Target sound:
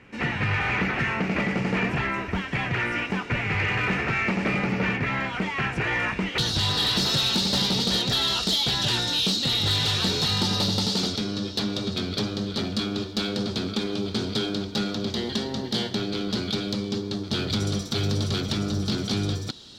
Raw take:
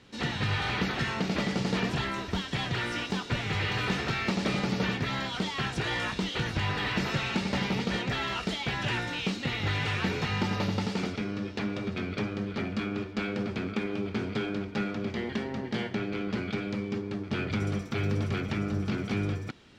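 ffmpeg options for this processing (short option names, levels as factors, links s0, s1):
-af "asetnsamples=n=441:p=0,asendcmd='6.38 highshelf g 9',highshelf=f=3000:t=q:w=3:g=-7,asoftclip=type=tanh:threshold=0.0944,volume=1.68"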